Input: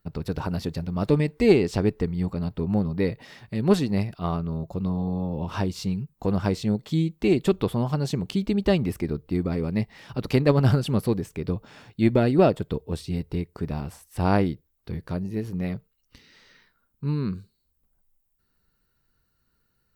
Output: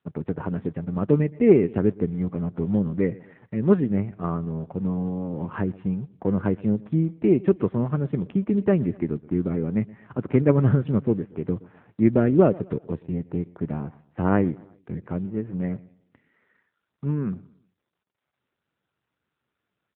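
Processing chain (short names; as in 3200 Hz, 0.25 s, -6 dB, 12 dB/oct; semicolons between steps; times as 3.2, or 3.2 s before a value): G.711 law mismatch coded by A; LPF 2000 Hz 24 dB/oct; low shelf 71 Hz -12 dB; feedback echo 0.122 s, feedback 37%, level -21.5 dB; dynamic EQ 780 Hz, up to -7 dB, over -41 dBFS, Q 1.7; gain +4 dB; AMR-NB 7.4 kbps 8000 Hz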